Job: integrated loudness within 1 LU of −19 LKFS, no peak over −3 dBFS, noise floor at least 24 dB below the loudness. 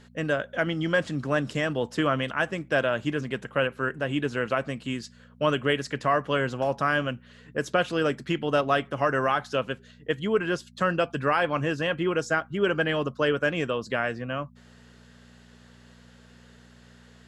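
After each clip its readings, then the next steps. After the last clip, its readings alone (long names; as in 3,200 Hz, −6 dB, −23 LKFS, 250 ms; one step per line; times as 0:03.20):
mains hum 60 Hz; hum harmonics up to 240 Hz; level of the hum −52 dBFS; integrated loudness −27.0 LKFS; sample peak −10.0 dBFS; target loudness −19.0 LKFS
→ hum removal 60 Hz, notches 4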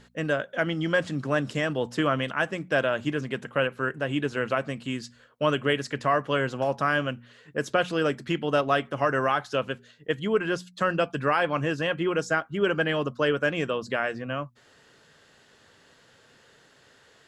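mains hum none found; integrated loudness −27.0 LKFS; sample peak −10.0 dBFS; target loudness −19.0 LKFS
→ level +8 dB
brickwall limiter −3 dBFS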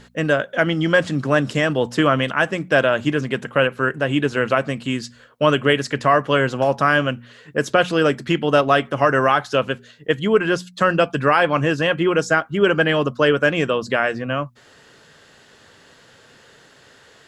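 integrated loudness −19.0 LKFS; sample peak −3.0 dBFS; background noise floor −51 dBFS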